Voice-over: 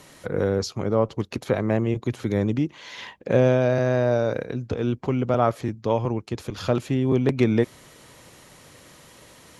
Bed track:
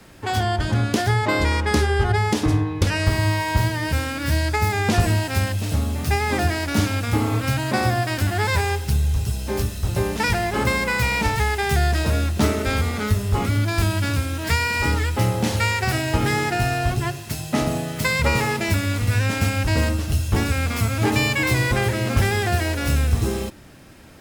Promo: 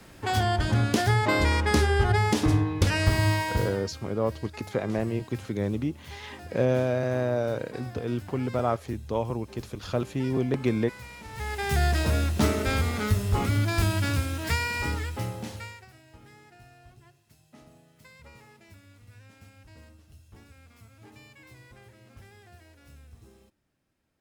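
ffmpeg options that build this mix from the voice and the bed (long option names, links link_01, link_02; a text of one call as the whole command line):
ffmpeg -i stem1.wav -i stem2.wav -filter_complex "[0:a]adelay=3250,volume=-5.5dB[link_01];[1:a]volume=16dB,afade=type=out:start_time=3.32:duration=0.57:silence=0.1,afade=type=in:start_time=11.28:duration=0.56:silence=0.112202,afade=type=out:start_time=14.14:duration=1.74:silence=0.0421697[link_02];[link_01][link_02]amix=inputs=2:normalize=0" out.wav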